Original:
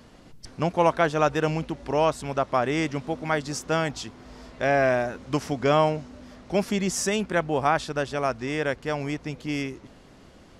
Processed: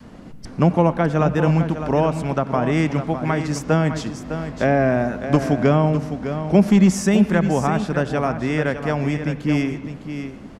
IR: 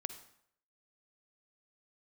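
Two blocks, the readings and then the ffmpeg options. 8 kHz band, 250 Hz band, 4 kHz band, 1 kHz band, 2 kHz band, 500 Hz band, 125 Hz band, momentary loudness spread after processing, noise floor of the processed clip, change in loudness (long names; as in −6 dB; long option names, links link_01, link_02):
0.0 dB, +11.0 dB, −1.0 dB, +1.5 dB, +2.0 dB, +3.5 dB, +12.0 dB, 10 LU, −39 dBFS, +6.0 dB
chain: -filter_complex "[0:a]equalizer=frequency=200:width_type=o:width=1:gain=7,acrossover=split=470[link_01][link_02];[link_02]acompressor=threshold=-26dB:ratio=10[link_03];[link_01][link_03]amix=inputs=2:normalize=0,adynamicequalizer=threshold=0.0158:dfrequency=390:dqfactor=0.92:tfrequency=390:tqfactor=0.92:attack=5:release=100:ratio=0.375:range=2.5:mode=cutabove:tftype=bell,aeval=exprs='clip(val(0),-1,0.141)':channel_layout=same,aecho=1:1:607:0.335,asplit=2[link_04][link_05];[1:a]atrim=start_sample=2205,asetrate=29106,aresample=44100,lowpass=2600[link_06];[link_05][link_06]afir=irnorm=-1:irlink=0,volume=-1.5dB[link_07];[link_04][link_07]amix=inputs=2:normalize=0,volume=2dB"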